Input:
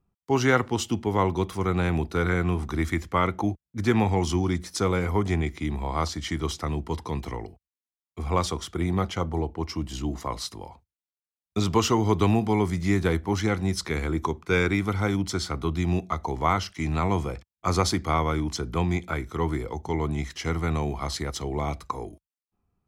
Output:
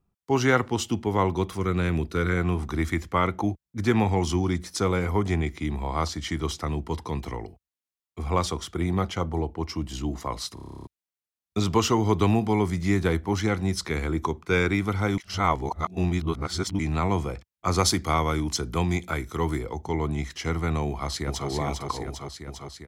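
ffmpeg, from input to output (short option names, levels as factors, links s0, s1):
-filter_complex "[0:a]asettb=1/sr,asplit=3[s0][s1][s2];[s0]atrim=end=1.584[s3];[s1]atrim=start=1.58:end=2.37,asetpts=PTS-STARTPTS,afade=t=in:d=0.004:c=qsin,afade=t=out:st=0.786:d=0.004:c=qsin,equalizer=f=800:w=2.9:g=-10[s4];[s2]atrim=start=2.366[s5];[s3][s4]acrossfade=d=0.004:c1=hsin:c2=qsin[s6];[s6][s5]acrossfade=d=0.004:c1=qsin:c2=hsin,asettb=1/sr,asplit=3[s7][s8][s9];[s7]atrim=end=17.784[s10];[s8]atrim=start=17.78:end=19.59,asetpts=PTS-STARTPTS,afade=t=in:d=0.004:c=qsin,afade=t=out:st=1.806:d=0.004:c=qsin,highshelf=f=4600:g=8.5[s11];[s9]atrim=start=19.586[s12];[s10][s11]acrossfade=d=0.004:c1=hsin:c2=qsin[s13];[s13][s12]acrossfade=d=0.004:c1=qsin:c2=hsin,asplit=2[s14][s15];[s15]afade=t=in:st=20.87:d=0.01,afade=t=out:st=21.48:d=0.01,aecho=0:1:400|800|1200|1600|2000|2400|2800|3200|3600|4000|4400|4800:0.595662|0.446747|0.33506|0.251295|0.188471|0.141353|0.106015|0.0795113|0.0596335|0.0447251|0.0335438|0.0251579[s16];[s14][s16]amix=inputs=2:normalize=0,asplit=14[s17][s18][s19][s20][s21][s22][s23][s24][s25][s26][s27][s28][s29][s30];[s17]atrim=end=10.572[s31];[s18]atrim=start=10.538:end=10.572[s32];[s19]atrim=start=10.538:end=10.572[s33];[s20]atrim=start=10.538:end=10.572[s34];[s21]atrim=start=10.538:end=10.572[s35];[s22]atrim=start=10.538:end=10.572[s36];[s23]atrim=start=10.538:end=10.572[s37];[s24]atrim=start=10.538:end=10.572[s38];[s25]atrim=start=10.538:end=10.572[s39];[s26]atrim=start=10.538:end=10.572[s40];[s27]atrim=start=10.538:end=10.572[s41];[s28]atrim=start=10.868:end=15.182[s42];[s29]atrim=start=15.178:end=16.792,asetpts=PTS-STARTPTS,areverse[s43];[s30]atrim=start=16.788[s44];[s31][s32]acrossfade=d=0.004:c1=hsin:c2=hsin[s45];[s45][s33]acrossfade=d=0.004:c1=hsin:c2=hsin[s46];[s46][s34]acrossfade=d=0.004:c1=hsin:c2=hsin[s47];[s47][s35]acrossfade=d=0.004:c1=hsin:c2=hsin[s48];[s48][s36]acrossfade=d=0.004:c1=hsin:c2=hsin[s49];[s49][s37]acrossfade=d=0.004:c1=hsin:c2=hsin[s50];[s50][s38]acrossfade=d=0.004:c1=hsin:c2=hsin[s51];[s51][s39]acrossfade=d=0.004:c1=hsin:c2=hsin[s52];[s52][s40]acrossfade=d=0.004:c1=hsin:c2=hsin[s53];[s53][s41]acrossfade=d=0.004:c1=hsin:c2=hsin[s54];[s54][s42]acrossfade=d=0.004:c1=hsin:c2=hsin[s55];[s55][s43]acrossfade=d=0.004:c1=hsin:c2=hsin[s56];[s56][s44]acrossfade=d=0.004:c1=hsin:c2=hsin"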